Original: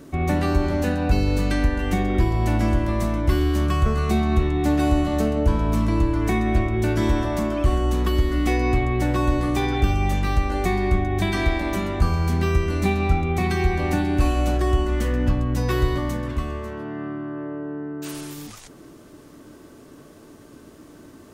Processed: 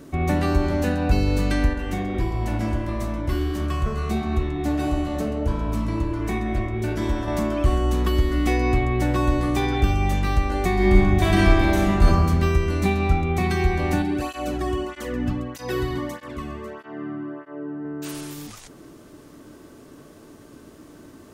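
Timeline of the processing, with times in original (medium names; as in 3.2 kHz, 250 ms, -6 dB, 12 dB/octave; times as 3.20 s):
1.73–7.28 s: flange 1.5 Hz, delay 2.1 ms, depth 9.2 ms, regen -58%
10.74–12.06 s: reverb throw, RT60 1.3 s, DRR -4 dB
14.02–17.85 s: cancelling through-zero flanger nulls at 1.6 Hz, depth 2.2 ms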